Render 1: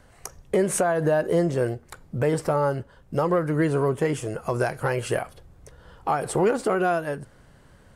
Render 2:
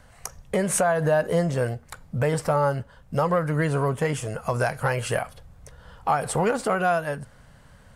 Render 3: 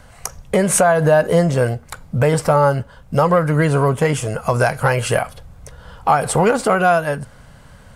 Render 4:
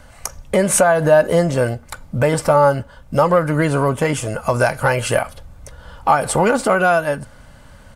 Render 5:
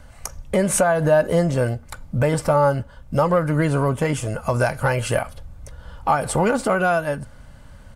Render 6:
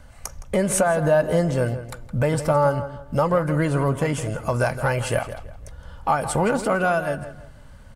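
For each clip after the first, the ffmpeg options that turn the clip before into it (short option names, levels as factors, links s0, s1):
-af "equalizer=f=350:w=2.7:g=-13,volume=1.33"
-af "bandreject=f=1800:w=19,volume=2.51"
-af "aecho=1:1:3.4:0.32"
-af "lowshelf=f=200:g=6.5,volume=0.562"
-filter_complex "[0:a]asplit=2[s0][s1];[s1]adelay=165,lowpass=f=3700:p=1,volume=0.251,asplit=2[s2][s3];[s3]adelay=165,lowpass=f=3700:p=1,volume=0.31,asplit=2[s4][s5];[s5]adelay=165,lowpass=f=3700:p=1,volume=0.31[s6];[s0][s2][s4][s6]amix=inputs=4:normalize=0,volume=0.794"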